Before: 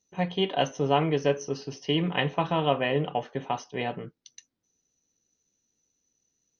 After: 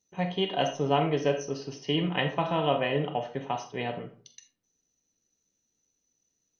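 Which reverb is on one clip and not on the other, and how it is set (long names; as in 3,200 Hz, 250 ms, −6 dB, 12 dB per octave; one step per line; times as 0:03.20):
comb and all-pass reverb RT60 0.42 s, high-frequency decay 0.6×, pre-delay 5 ms, DRR 7 dB
level −2 dB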